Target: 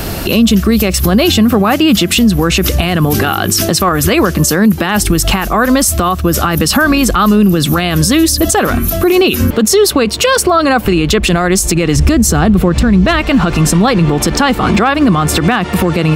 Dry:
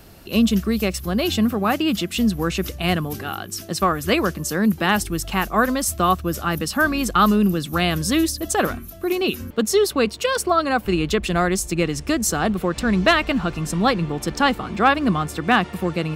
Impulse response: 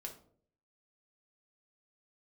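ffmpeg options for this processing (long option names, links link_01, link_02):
-filter_complex "[0:a]asettb=1/sr,asplit=3[link_01][link_02][link_03];[link_01]atrim=end=11.964[link_04];[link_02]atrim=start=11.96:end=13.21,asetpts=PTS-STARTPTS,afade=type=in:duration=0.004:curve=qsin,afade=type=out:start_time=1.246:duration=0.004:curve=qsin,equalizer=frequency=71:width=0.32:gain=12.5[link_05];[link_03]atrim=start=13.206[link_06];[link_04][link_05]acrossfade=duration=0.004:curve1=hsin:curve2=qsin[link_07];[link_07][link_06]acrossfade=duration=0.004:curve1=qsin:curve2=hsin,acompressor=threshold=-29dB:ratio=6,alimiter=level_in=27.5dB:limit=-1dB:release=50:level=0:latency=1,volume=-1dB"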